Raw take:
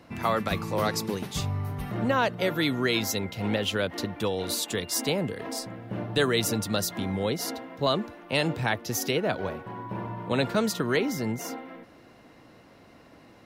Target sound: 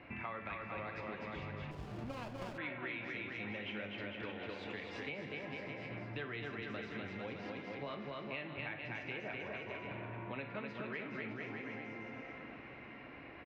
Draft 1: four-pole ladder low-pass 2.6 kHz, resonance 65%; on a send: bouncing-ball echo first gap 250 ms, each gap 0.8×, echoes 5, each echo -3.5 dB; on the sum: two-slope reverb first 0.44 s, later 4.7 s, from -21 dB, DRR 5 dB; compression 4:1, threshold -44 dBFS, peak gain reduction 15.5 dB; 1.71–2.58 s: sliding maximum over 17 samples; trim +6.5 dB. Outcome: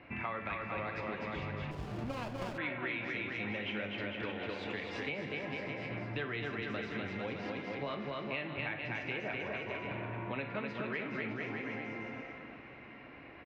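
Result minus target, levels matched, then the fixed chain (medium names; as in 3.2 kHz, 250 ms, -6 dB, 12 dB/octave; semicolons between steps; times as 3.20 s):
compression: peak gain reduction -5 dB
four-pole ladder low-pass 2.6 kHz, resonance 65%; on a send: bouncing-ball echo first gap 250 ms, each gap 0.8×, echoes 5, each echo -3.5 dB; on the sum: two-slope reverb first 0.44 s, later 4.7 s, from -21 dB, DRR 5 dB; compression 4:1, threshold -50.5 dBFS, peak gain reduction 20.5 dB; 1.71–2.58 s: sliding maximum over 17 samples; trim +6.5 dB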